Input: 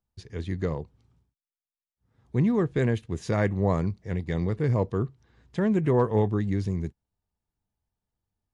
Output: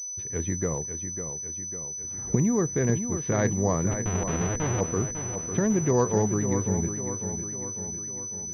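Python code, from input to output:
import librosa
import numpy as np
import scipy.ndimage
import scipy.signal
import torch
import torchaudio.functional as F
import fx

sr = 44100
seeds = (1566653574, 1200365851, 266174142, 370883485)

y = fx.recorder_agc(x, sr, target_db=-16.5, rise_db_per_s=13.0, max_gain_db=30)
y = fx.air_absorb(y, sr, metres=140.0, at=(2.38, 3.17))
y = fx.schmitt(y, sr, flips_db=-36.0, at=(3.91, 4.81))
y = fx.low_shelf(y, sr, hz=71.0, db=-7.5)
y = fx.echo_feedback(y, sr, ms=550, feedback_pct=56, wet_db=-8.5)
y = fx.pwm(y, sr, carrier_hz=6000.0)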